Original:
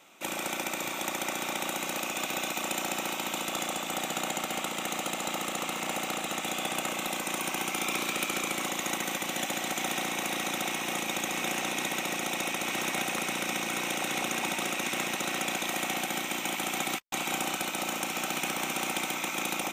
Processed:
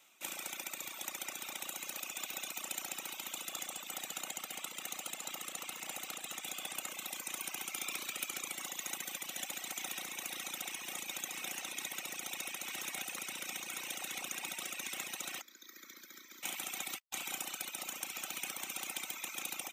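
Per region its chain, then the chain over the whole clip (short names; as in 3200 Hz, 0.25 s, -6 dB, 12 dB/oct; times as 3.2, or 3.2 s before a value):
15.41–16.43 ladder high-pass 210 Hz, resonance 30% + fixed phaser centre 2800 Hz, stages 6
whole clip: pre-emphasis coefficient 0.9; reverb removal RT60 1.5 s; high shelf 4600 Hz -10 dB; gain +4 dB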